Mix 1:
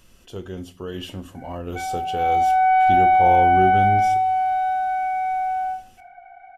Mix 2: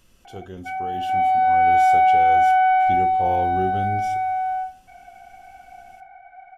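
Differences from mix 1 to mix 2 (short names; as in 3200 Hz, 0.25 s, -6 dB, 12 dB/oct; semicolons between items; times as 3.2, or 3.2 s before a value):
speech -4.0 dB; background: entry -1.10 s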